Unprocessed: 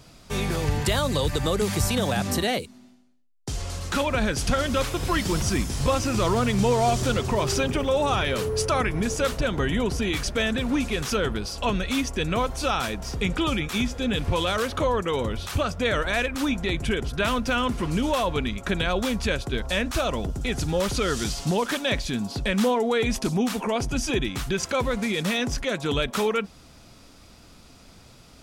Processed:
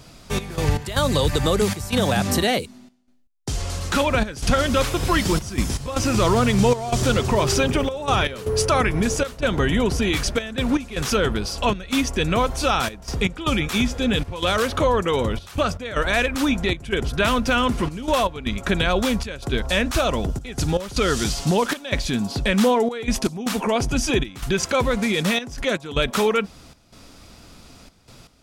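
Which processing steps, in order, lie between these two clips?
trance gate "xx.x.xxxx.xxx" 78 bpm -12 dB; trim +4.5 dB

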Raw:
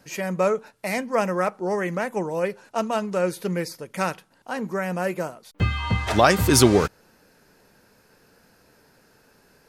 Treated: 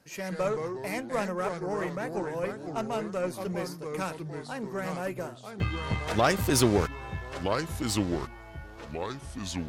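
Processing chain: ever faster or slower copies 96 ms, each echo -3 st, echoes 3, each echo -6 dB; Chebyshev shaper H 6 -22 dB, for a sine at -2.5 dBFS; trim -7.5 dB

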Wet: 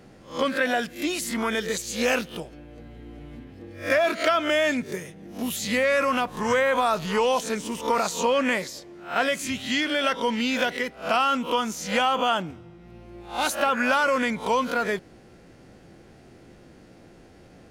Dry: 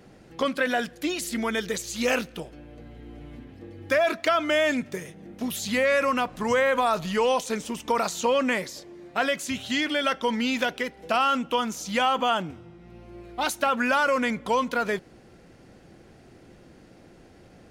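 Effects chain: reverse spectral sustain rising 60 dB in 0.33 s

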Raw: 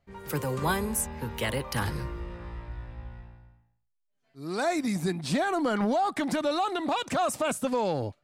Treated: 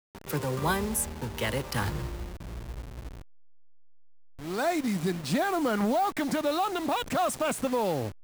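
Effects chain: send-on-delta sampling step -36 dBFS

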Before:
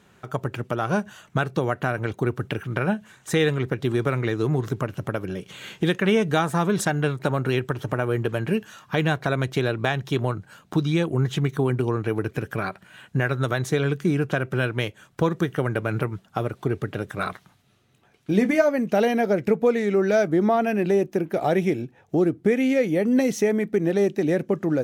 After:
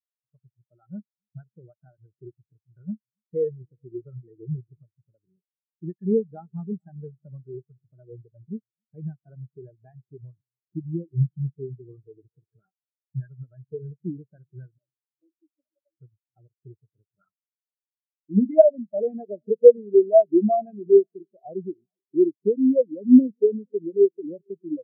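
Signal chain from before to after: 14.78–16.00 s: two resonant band-passes 420 Hz, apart 0.96 oct; two-band feedback delay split 380 Hz, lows 276 ms, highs 433 ms, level -15 dB; spectral contrast expander 4:1; trim +5 dB

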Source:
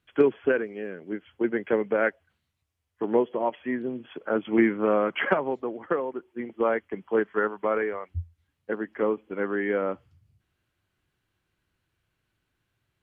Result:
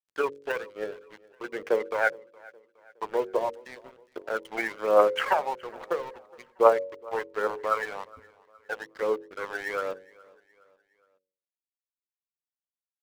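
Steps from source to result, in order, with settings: graphic EQ 125/250/500/1000 Hz -11/-7/+10/+7 dB; phaser 1.2 Hz, delay 1.4 ms, feedback 68%; tilt EQ +3 dB/octave; band noise 110–500 Hz -49 dBFS; crossover distortion -34.5 dBFS; de-hum 46.9 Hz, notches 12; on a send: feedback delay 416 ms, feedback 46%, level -24 dB; on the sum: trim -6 dB

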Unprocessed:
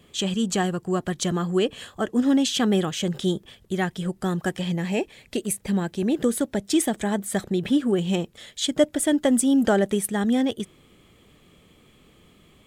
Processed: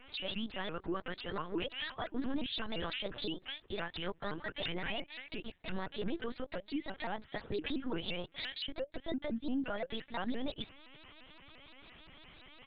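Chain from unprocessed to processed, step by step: high-pass 790 Hz 6 dB/octave; comb 3.5 ms, depth 87%; compression 12:1, threshold -34 dBFS, peak gain reduction 21 dB; peak limiter -30.5 dBFS, peak gain reduction 9 dB; LPC vocoder at 8 kHz pitch kept; vibrato with a chosen wave saw up 5.8 Hz, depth 250 cents; trim +3 dB

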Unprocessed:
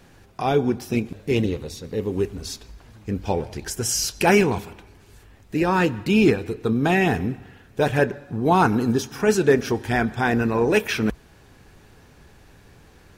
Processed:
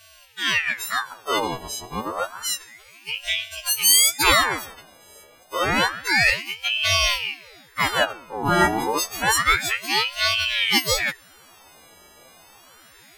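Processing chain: partials quantised in pitch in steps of 4 st; ring modulator with a swept carrier 1.7 kHz, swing 70%, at 0.29 Hz

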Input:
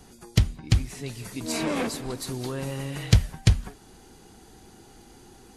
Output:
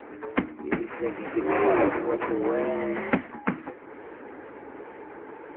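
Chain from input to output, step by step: in parallel at 0 dB: compression 10:1, threshold -38 dBFS, peak gain reduction 26 dB; on the sum: sample-and-hold 9×; mistuned SSB +76 Hz 190–2200 Hz; on a send: thinning echo 109 ms, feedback 29%, high-pass 990 Hz, level -21.5 dB; on the sum: wow and flutter 54 cents; trim +6.5 dB; AMR-NB 6.7 kbps 8 kHz

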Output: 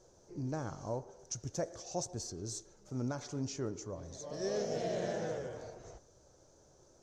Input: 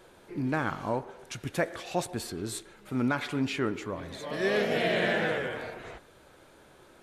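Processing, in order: FFT filter 120 Hz 0 dB, 230 Hz -8 dB, 580 Hz -3 dB, 2.3 kHz -21 dB, 3.7 kHz -14 dB, 6.1 kHz +11 dB, 10 kHz -19 dB; trim -3 dB

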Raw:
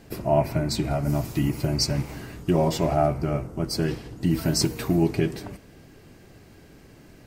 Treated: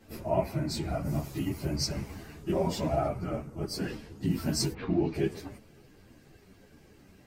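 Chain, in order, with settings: phase randomisation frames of 50 ms; 4.72–5.13 s: low-pass 2.7 kHz -> 5.7 kHz 24 dB/octave; three-phase chorus; trim -3.5 dB

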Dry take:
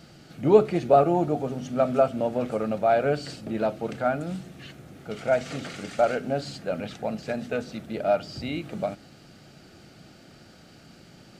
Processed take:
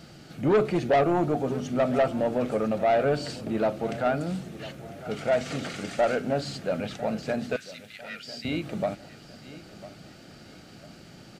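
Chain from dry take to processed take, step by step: saturation -18.5 dBFS, distortion -9 dB; 7.56–8.45 s: steep high-pass 1.6 kHz 36 dB/octave; on a send: feedback delay 1000 ms, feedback 40%, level -17 dB; on the sum: trim +2 dB

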